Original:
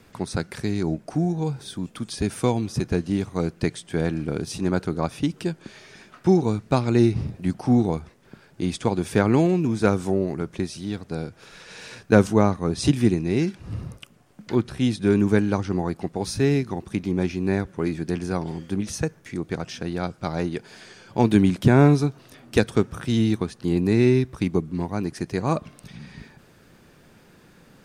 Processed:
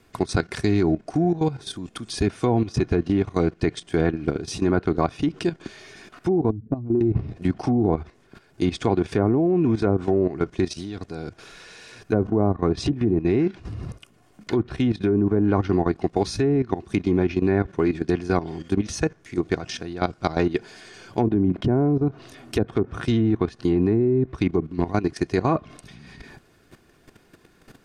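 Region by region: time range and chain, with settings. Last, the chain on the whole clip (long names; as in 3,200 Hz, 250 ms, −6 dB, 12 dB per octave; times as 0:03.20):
0:06.50–0:07.01: expanding power law on the bin magnitudes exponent 2.3 + parametric band 300 Hz +8 dB 0.68 octaves + downward compressor 8 to 1, threshold −22 dBFS
whole clip: treble cut that deepens with the level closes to 710 Hz, closed at −14 dBFS; comb filter 2.8 ms, depth 36%; output level in coarse steps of 13 dB; level +7 dB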